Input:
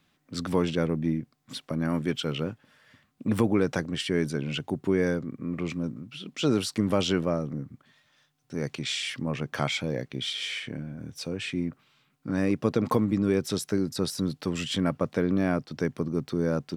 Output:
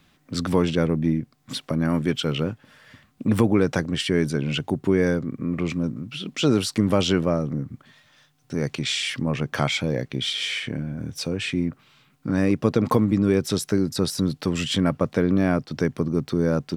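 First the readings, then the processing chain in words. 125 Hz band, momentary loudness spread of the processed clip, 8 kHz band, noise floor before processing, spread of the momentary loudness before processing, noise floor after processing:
+6.0 dB, 9 LU, +5.0 dB, -70 dBFS, 10 LU, -62 dBFS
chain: bass shelf 72 Hz +8 dB; in parallel at -2 dB: compression, threshold -37 dBFS, peak gain reduction 18.5 dB; on the sum: trim +3 dB

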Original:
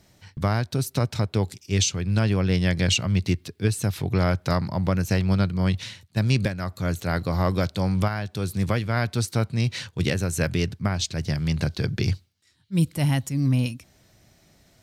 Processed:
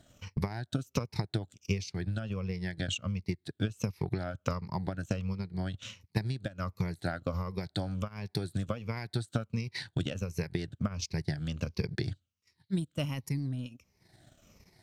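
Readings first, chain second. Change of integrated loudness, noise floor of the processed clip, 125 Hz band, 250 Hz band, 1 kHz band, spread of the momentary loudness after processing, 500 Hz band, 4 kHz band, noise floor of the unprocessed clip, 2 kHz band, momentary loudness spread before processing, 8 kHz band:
-11.0 dB, -78 dBFS, -11.0 dB, -10.0 dB, -11.0 dB, 3 LU, -10.0 dB, -11.0 dB, -61 dBFS, -11.0 dB, 6 LU, -15.0 dB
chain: drifting ripple filter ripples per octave 0.83, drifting -1.4 Hz, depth 12 dB; treble shelf 9 kHz -5 dB; compression 8:1, threshold -28 dBFS, peak gain reduction 14.5 dB; transient shaper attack +7 dB, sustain -12 dB; trim -4.5 dB

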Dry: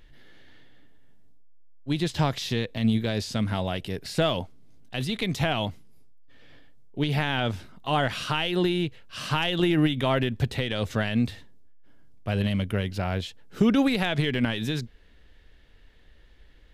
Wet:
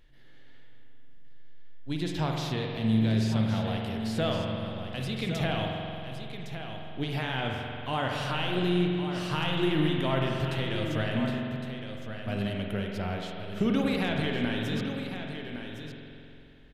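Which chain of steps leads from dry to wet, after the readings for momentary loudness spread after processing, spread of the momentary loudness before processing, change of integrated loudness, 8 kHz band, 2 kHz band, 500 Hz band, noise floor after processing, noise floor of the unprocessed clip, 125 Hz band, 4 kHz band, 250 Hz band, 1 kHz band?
13 LU, 10 LU, -3.5 dB, -6.0 dB, -3.5 dB, -2.5 dB, -47 dBFS, -53 dBFS, -2.0 dB, -4.0 dB, -2.5 dB, -3.0 dB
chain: on a send: delay 1111 ms -9 dB; on the sum: spring tank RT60 2.8 s, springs 45 ms, chirp 40 ms, DRR 0.5 dB; trim -6.5 dB

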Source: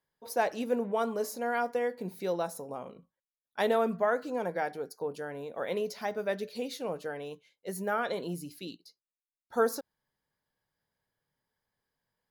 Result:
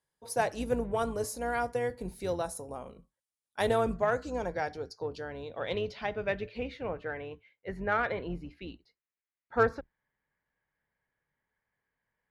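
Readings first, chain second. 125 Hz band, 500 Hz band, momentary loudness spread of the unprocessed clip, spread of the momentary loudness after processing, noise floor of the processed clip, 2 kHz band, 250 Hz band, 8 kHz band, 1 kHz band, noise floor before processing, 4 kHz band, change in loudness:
+5.0 dB, -1.0 dB, 13 LU, 15 LU, under -85 dBFS, +2.0 dB, -1.0 dB, +0.5 dB, 0.0 dB, under -85 dBFS, -0.5 dB, 0.0 dB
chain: octave divider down 2 oct, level -4 dB; low-pass sweep 9.6 kHz -> 2.1 kHz, 3.64–6.81 s; Chebyshev shaper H 7 -32 dB, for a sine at -11 dBFS

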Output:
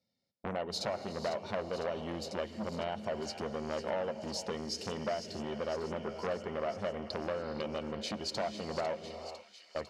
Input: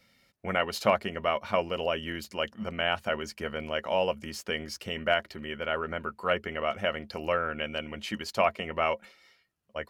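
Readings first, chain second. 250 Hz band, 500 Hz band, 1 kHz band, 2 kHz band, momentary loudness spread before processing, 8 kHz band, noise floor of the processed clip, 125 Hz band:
-2.5 dB, -5.5 dB, -8.5 dB, -13.0 dB, 8 LU, -0.5 dB, -61 dBFS, -3.5 dB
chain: high-pass 87 Hz 12 dB/octave; gate with hold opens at -45 dBFS; low-pass 5.9 kHz 12 dB/octave; high-order bell 1.8 kHz -13 dB; band-stop 3.2 kHz, Q 26; compression 6:1, threshold -36 dBFS, peak gain reduction 15.5 dB; feedback echo behind a high-pass 501 ms, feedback 69%, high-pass 2 kHz, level -10 dB; gated-style reverb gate 500 ms rising, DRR 10 dB; transformer saturation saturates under 1.5 kHz; trim +5.5 dB

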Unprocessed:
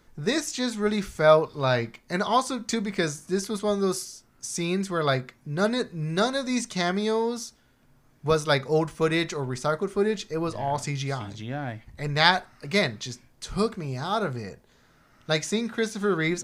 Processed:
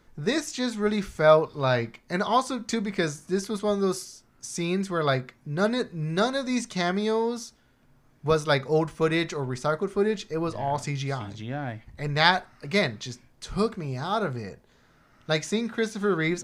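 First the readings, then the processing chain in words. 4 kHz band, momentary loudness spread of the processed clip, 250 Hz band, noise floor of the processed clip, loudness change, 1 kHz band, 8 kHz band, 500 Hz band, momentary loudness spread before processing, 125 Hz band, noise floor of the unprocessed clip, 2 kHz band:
-2.0 dB, 12 LU, 0.0 dB, -61 dBFS, -0.5 dB, 0.0 dB, -3.5 dB, 0.0 dB, 12 LU, 0.0 dB, -61 dBFS, -0.5 dB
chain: treble shelf 5.1 kHz -5 dB

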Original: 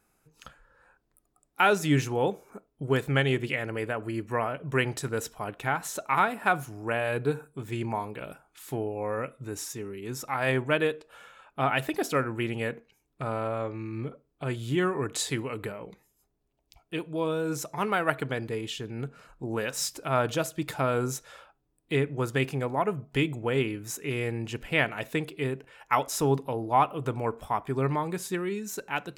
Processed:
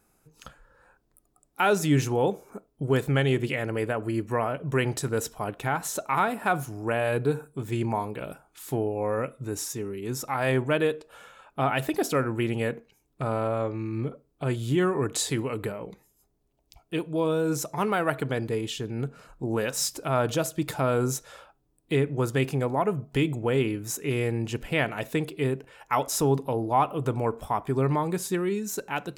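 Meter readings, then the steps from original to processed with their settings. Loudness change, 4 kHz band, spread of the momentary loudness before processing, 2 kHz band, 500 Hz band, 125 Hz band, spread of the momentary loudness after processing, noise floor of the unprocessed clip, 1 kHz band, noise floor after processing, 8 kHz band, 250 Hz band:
+2.0 dB, +0.5 dB, 12 LU, -1.5 dB, +2.5 dB, +3.5 dB, 9 LU, -74 dBFS, +0.5 dB, -70 dBFS, +3.5 dB, +3.0 dB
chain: peaking EQ 2.1 kHz -4.5 dB 2 oct; in parallel at 0 dB: peak limiter -22 dBFS, peak gain reduction 10.5 dB; on the sum: trim -1.5 dB

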